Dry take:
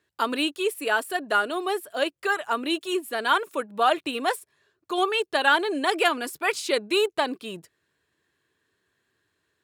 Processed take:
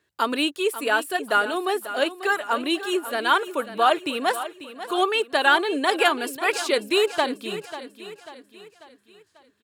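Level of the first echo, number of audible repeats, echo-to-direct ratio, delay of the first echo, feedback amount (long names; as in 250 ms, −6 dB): −13.0 dB, 4, −12.0 dB, 542 ms, 46%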